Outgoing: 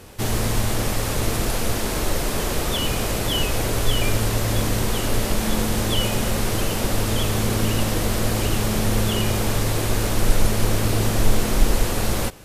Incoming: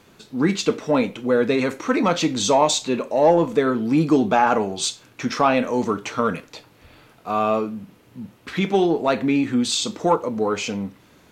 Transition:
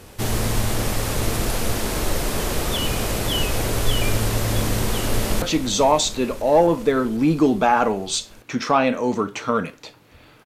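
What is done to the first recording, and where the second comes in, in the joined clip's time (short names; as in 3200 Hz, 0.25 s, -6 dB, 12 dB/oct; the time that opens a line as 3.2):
outgoing
5.17–5.42 echo throw 0.25 s, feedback 85%, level -11 dB
5.42 switch to incoming from 2.12 s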